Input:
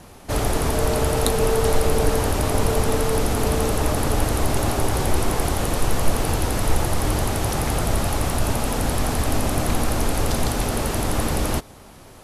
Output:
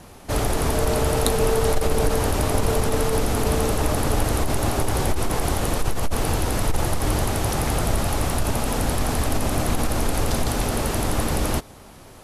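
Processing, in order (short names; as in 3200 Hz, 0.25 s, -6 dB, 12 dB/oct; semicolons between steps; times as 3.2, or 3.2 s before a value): core saturation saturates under 45 Hz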